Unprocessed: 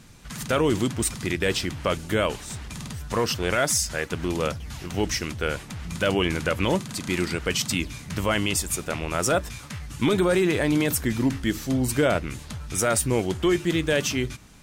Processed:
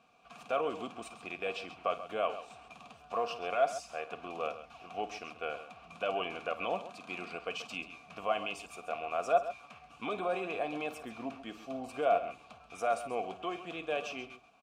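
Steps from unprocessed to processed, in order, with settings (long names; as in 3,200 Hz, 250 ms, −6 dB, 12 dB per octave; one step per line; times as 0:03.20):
formant filter a
comb filter 4.3 ms, depth 33%
on a send: multi-tap delay 53/134 ms −15/−13 dB
on the sum: level +2 dB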